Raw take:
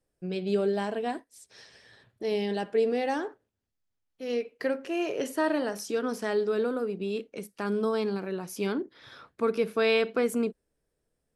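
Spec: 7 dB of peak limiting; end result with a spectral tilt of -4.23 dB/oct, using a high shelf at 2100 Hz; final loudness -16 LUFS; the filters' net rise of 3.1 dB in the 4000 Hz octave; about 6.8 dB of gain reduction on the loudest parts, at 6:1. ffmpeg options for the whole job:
-af "highshelf=f=2.1k:g=-5.5,equalizer=f=4k:t=o:g=9,acompressor=threshold=-28dB:ratio=6,volume=20.5dB,alimiter=limit=-6.5dB:level=0:latency=1"

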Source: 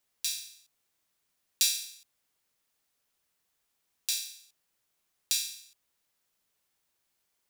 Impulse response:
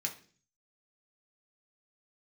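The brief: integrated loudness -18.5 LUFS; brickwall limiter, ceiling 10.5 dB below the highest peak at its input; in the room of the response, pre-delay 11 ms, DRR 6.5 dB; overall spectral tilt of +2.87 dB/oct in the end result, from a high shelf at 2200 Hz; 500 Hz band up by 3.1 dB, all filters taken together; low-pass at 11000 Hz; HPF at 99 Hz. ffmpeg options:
-filter_complex "[0:a]highpass=99,lowpass=11k,equalizer=f=500:t=o:g=4,highshelf=f=2.2k:g=-3.5,alimiter=limit=-20dB:level=0:latency=1,asplit=2[a][b];[1:a]atrim=start_sample=2205,adelay=11[c];[b][c]afir=irnorm=-1:irlink=0,volume=-8dB[d];[a][d]amix=inputs=2:normalize=0,volume=18dB"

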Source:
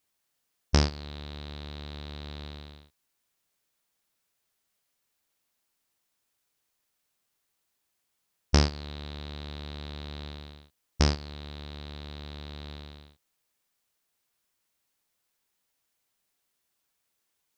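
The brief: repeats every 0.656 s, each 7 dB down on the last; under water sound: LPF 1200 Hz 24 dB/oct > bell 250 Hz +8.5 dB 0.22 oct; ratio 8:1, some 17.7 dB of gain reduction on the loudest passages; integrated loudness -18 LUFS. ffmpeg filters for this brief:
-af "acompressor=threshold=-36dB:ratio=8,lowpass=f=1.2k:w=0.5412,lowpass=f=1.2k:w=1.3066,equalizer=f=250:t=o:w=0.22:g=8.5,aecho=1:1:656|1312|1968|2624|3280:0.447|0.201|0.0905|0.0407|0.0183,volume=26.5dB"

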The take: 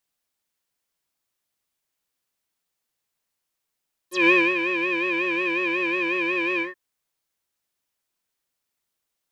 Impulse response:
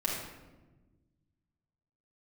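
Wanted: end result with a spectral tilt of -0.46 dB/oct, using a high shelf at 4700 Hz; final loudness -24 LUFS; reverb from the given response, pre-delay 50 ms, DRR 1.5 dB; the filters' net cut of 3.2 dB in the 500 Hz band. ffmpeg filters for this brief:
-filter_complex "[0:a]equalizer=f=500:t=o:g=-5.5,highshelf=f=4.7k:g=4.5,asplit=2[a][b];[1:a]atrim=start_sample=2205,adelay=50[c];[b][c]afir=irnorm=-1:irlink=0,volume=-8dB[d];[a][d]amix=inputs=2:normalize=0,volume=-4.5dB"

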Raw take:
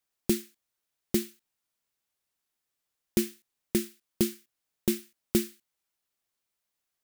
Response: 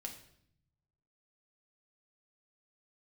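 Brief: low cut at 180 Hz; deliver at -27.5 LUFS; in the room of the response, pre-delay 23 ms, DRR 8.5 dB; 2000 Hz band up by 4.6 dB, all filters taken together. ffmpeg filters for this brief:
-filter_complex "[0:a]highpass=180,equalizer=f=2k:t=o:g=5.5,asplit=2[a][b];[1:a]atrim=start_sample=2205,adelay=23[c];[b][c]afir=irnorm=-1:irlink=0,volume=-5.5dB[d];[a][d]amix=inputs=2:normalize=0,volume=3.5dB"

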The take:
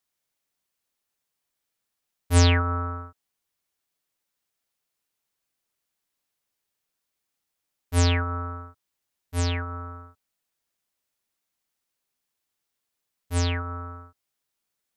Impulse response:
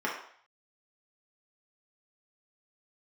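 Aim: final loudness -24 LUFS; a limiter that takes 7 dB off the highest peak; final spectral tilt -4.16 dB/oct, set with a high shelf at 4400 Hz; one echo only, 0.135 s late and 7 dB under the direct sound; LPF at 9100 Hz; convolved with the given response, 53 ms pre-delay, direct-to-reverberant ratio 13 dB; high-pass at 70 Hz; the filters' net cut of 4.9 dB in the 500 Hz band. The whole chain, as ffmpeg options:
-filter_complex "[0:a]highpass=70,lowpass=9.1k,equalizer=f=500:t=o:g=-6,highshelf=f=4.4k:g=5.5,alimiter=limit=-10dB:level=0:latency=1,aecho=1:1:135:0.447,asplit=2[a][b];[1:a]atrim=start_sample=2205,adelay=53[c];[b][c]afir=irnorm=-1:irlink=0,volume=-22.5dB[d];[a][d]amix=inputs=2:normalize=0,volume=3.5dB"

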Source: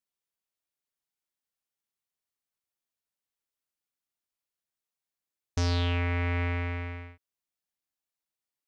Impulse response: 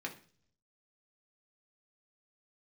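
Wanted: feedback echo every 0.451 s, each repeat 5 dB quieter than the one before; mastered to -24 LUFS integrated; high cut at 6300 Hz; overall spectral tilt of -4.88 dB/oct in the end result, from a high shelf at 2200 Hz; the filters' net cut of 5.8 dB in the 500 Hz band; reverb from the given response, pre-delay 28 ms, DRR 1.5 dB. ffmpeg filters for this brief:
-filter_complex "[0:a]lowpass=6.3k,equalizer=f=500:t=o:g=-7.5,highshelf=f=2.2k:g=6.5,aecho=1:1:451|902|1353|1804|2255|2706|3157:0.562|0.315|0.176|0.0988|0.0553|0.031|0.0173,asplit=2[a][b];[1:a]atrim=start_sample=2205,adelay=28[c];[b][c]afir=irnorm=-1:irlink=0,volume=-2.5dB[d];[a][d]amix=inputs=2:normalize=0,volume=4dB"

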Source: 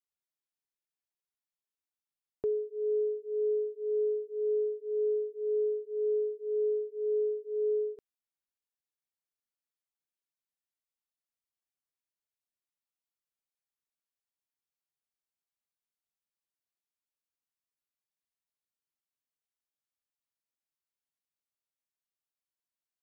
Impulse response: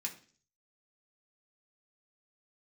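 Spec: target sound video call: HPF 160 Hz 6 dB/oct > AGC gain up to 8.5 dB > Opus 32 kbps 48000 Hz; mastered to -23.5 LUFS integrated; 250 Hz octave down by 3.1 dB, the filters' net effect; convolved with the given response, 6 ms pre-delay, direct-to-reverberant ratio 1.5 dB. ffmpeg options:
-filter_complex "[0:a]equalizer=f=250:t=o:g=-8,asplit=2[a][b];[1:a]atrim=start_sample=2205,adelay=6[c];[b][c]afir=irnorm=-1:irlink=0,volume=-1dB[d];[a][d]amix=inputs=2:normalize=0,highpass=f=160:p=1,dynaudnorm=m=8.5dB,volume=9dB" -ar 48000 -c:a libopus -b:a 32k

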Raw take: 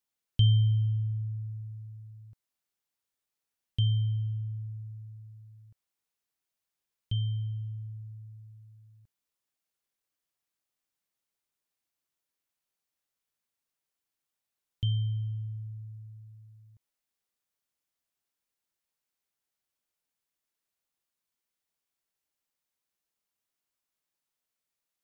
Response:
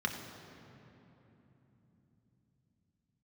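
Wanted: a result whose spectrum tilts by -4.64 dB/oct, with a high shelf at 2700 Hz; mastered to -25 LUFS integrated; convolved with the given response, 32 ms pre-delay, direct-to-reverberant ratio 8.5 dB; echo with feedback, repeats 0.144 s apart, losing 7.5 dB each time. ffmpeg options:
-filter_complex "[0:a]highshelf=f=2.7k:g=9,aecho=1:1:144|288|432|576|720:0.422|0.177|0.0744|0.0312|0.0131,asplit=2[a][b];[1:a]atrim=start_sample=2205,adelay=32[c];[b][c]afir=irnorm=-1:irlink=0,volume=-14.5dB[d];[a][d]amix=inputs=2:normalize=0,volume=6dB"

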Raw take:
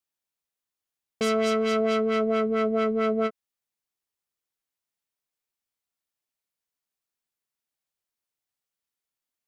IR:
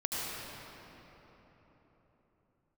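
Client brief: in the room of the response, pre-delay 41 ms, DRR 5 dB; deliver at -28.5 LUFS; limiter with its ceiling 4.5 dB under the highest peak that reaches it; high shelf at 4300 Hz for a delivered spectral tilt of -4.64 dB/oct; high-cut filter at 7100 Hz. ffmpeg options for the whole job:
-filter_complex "[0:a]lowpass=7.1k,highshelf=f=4.3k:g=-4,alimiter=limit=-21dB:level=0:latency=1,asplit=2[a][b];[1:a]atrim=start_sample=2205,adelay=41[c];[b][c]afir=irnorm=-1:irlink=0,volume=-11.5dB[d];[a][d]amix=inputs=2:normalize=0,volume=-0.5dB"

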